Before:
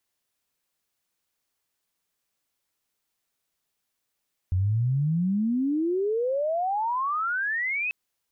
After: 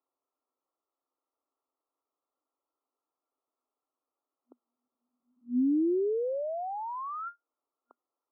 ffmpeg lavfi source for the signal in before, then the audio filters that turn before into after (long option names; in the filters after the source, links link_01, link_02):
-f lavfi -i "aevalsrc='pow(10,(-20.5-4.5*t/3.39)/20)*sin(2*PI*88*3.39/log(2600/88)*(exp(log(2600/88)*t/3.39)-1))':duration=3.39:sample_rate=44100"
-filter_complex "[0:a]afftfilt=real='re*between(b*sr/4096,240,1400)':imag='im*between(b*sr/4096,240,1400)':win_size=4096:overlap=0.75,acrossover=split=410[link_01][link_02];[link_02]acompressor=threshold=-37dB:ratio=6[link_03];[link_01][link_03]amix=inputs=2:normalize=0"